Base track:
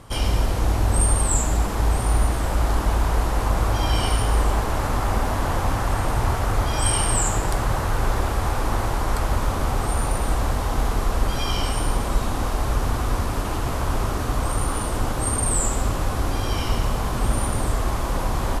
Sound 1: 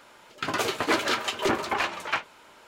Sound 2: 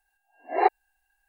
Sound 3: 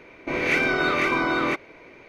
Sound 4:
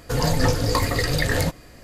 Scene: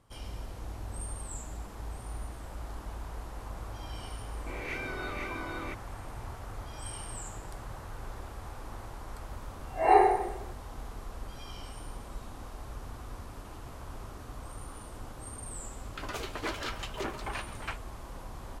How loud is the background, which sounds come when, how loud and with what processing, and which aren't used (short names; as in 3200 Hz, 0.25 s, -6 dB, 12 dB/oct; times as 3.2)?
base track -20 dB
4.19 add 3 -16 dB
9.25 add 2 -12.5 dB + shoebox room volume 560 m³, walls mixed, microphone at 7.3 m
15.55 add 1 -11.5 dB
not used: 4